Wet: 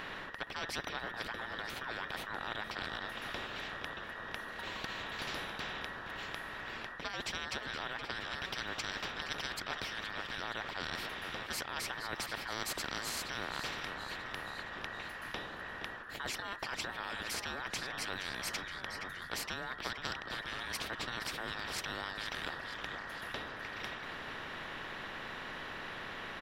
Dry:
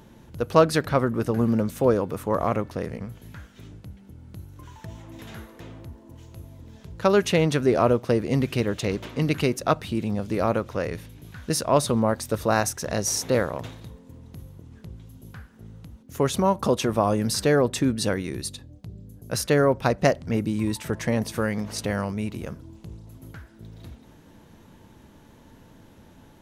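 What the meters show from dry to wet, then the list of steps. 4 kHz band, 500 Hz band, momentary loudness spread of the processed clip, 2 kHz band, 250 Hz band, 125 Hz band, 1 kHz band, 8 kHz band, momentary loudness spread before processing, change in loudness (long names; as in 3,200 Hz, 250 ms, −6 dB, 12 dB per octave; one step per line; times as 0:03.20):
−3.5 dB, −22.5 dB, 5 LU, −2.5 dB, −23.5 dB, −23.5 dB, −11.5 dB, −13.0 dB, 22 LU, −15.5 dB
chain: frequency inversion band by band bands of 2,000 Hz
high-shelf EQ 11,000 Hz +9 dB
reversed playback
downward compressor 6 to 1, threshold −32 dBFS, peak gain reduction 20 dB
reversed playback
high-frequency loss of the air 320 metres
on a send: echo with shifted repeats 470 ms, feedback 57%, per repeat −90 Hz, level −16 dB
on the sum: every bin compressed towards the loudest bin 4 to 1
level +3.5 dB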